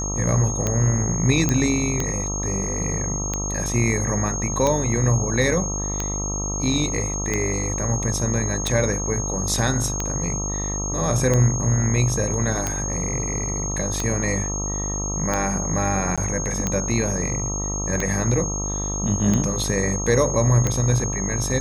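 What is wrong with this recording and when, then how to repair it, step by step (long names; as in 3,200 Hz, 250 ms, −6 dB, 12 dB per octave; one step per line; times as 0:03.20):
mains buzz 50 Hz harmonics 26 −28 dBFS
scratch tick 45 rpm −9 dBFS
whistle 6,500 Hz −27 dBFS
0:01.49: click −7 dBFS
0:16.16–0:16.18: drop-out 16 ms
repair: click removal
hum removal 50 Hz, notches 26
notch filter 6,500 Hz, Q 30
repair the gap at 0:16.16, 16 ms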